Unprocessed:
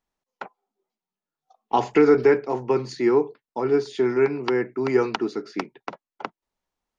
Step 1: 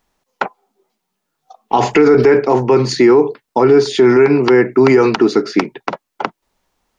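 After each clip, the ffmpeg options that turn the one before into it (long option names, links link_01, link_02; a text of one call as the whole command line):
ffmpeg -i in.wav -af "alimiter=level_in=18dB:limit=-1dB:release=50:level=0:latency=1,volume=-1dB" out.wav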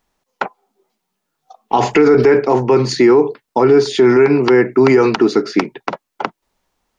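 ffmpeg -i in.wav -af "dynaudnorm=framelen=200:gausssize=7:maxgain=11.5dB,volume=-2dB" out.wav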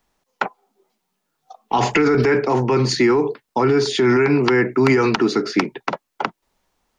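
ffmpeg -i in.wav -filter_complex "[0:a]acrossover=split=260|970[link_01][link_02][link_03];[link_02]alimiter=limit=-16dB:level=0:latency=1[link_04];[link_01][link_04][link_03]amix=inputs=3:normalize=0,asoftclip=type=hard:threshold=-4dB" out.wav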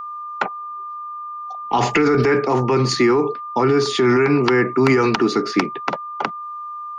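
ffmpeg -i in.wav -af "aeval=exprs='val(0)+0.0398*sin(2*PI*1200*n/s)':channel_layout=same" out.wav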